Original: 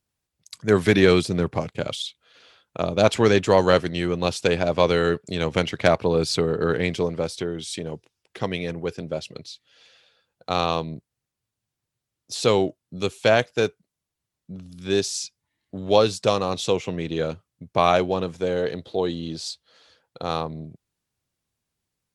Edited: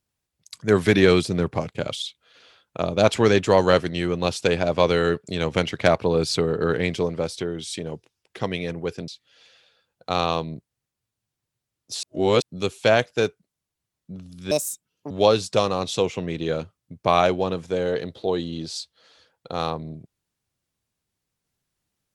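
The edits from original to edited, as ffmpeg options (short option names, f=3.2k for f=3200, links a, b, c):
-filter_complex "[0:a]asplit=6[a][b][c][d][e][f];[a]atrim=end=9.082[g];[b]atrim=start=9.478:end=12.432[h];[c]atrim=start=12.428:end=12.822,asetpts=PTS-STARTPTS,areverse[i];[d]atrim=start=12.818:end=14.914[j];[e]atrim=start=14.91:end=15.81,asetpts=PTS-STARTPTS,asetrate=66591,aresample=44100[k];[f]atrim=start=15.806[l];[g][h]acrossfade=d=0.004:c1=hsin:c2=hsin[m];[m][i]acrossfade=d=0.004:c1=hsin:c2=hsin[n];[n][j]acrossfade=d=0.004:c1=hsin:c2=hsin[o];[o][k]acrossfade=d=0.004:c1=hsin:c2=hsin[p];[p][l]acrossfade=d=0.004:c1=hsin:c2=hsin"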